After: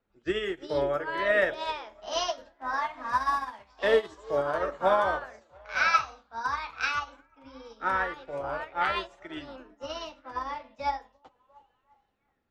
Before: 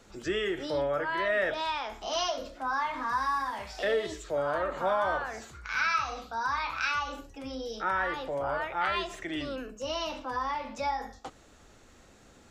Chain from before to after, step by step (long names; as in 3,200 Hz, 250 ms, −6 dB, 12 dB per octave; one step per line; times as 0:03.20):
echo through a band-pass that steps 345 ms, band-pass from 380 Hz, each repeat 0.7 octaves, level −8 dB
low-pass that shuts in the quiet parts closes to 2,500 Hz, open at −25.5 dBFS
expander for the loud parts 2.5 to 1, over −44 dBFS
level +7 dB